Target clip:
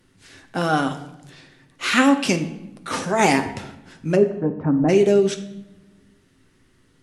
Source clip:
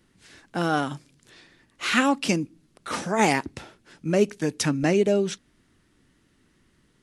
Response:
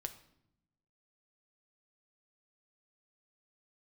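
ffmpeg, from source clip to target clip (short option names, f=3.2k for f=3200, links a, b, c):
-filter_complex "[0:a]asplit=3[a][b][c];[a]afade=t=out:st=4.15:d=0.02[d];[b]lowpass=f=1.1k:w=0.5412,lowpass=f=1.1k:w=1.3066,afade=t=in:st=4.15:d=0.02,afade=t=out:st=4.88:d=0.02[e];[c]afade=t=in:st=4.88:d=0.02[f];[d][e][f]amix=inputs=3:normalize=0[g];[1:a]atrim=start_sample=2205,asetrate=34398,aresample=44100[h];[g][h]afir=irnorm=-1:irlink=0,volume=5dB"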